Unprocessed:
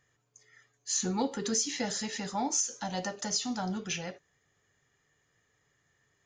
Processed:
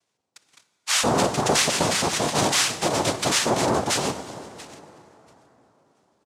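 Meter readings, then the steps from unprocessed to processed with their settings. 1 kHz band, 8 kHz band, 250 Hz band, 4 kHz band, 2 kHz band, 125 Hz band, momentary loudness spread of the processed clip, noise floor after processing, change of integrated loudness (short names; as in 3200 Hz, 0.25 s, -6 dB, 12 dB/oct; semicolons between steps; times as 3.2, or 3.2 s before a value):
+13.0 dB, +7.5 dB, +7.0 dB, +13.0 dB, +15.0 dB, +12.0 dB, 15 LU, -77 dBFS, +10.5 dB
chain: feedback echo 0.683 s, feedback 36%, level -19.5 dB; sample leveller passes 3; noise vocoder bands 2; plate-style reverb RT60 4.1 s, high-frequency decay 0.55×, DRR 13 dB; gain +2.5 dB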